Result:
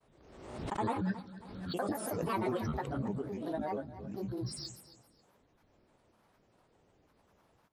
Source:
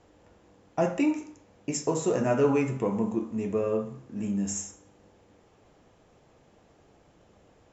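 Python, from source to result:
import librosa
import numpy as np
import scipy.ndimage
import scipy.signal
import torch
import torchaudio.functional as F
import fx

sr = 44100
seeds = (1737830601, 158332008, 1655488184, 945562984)

y = fx.granulator(x, sr, seeds[0], grain_ms=100.0, per_s=20.0, spray_ms=100.0, spread_st=12)
y = fx.echo_feedback(y, sr, ms=271, feedback_pct=25, wet_db=-16.0)
y = fx.pre_swell(y, sr, db_per_s=50.0)
y = F.gain(torch.from_numpy(y), -8.5).numpy()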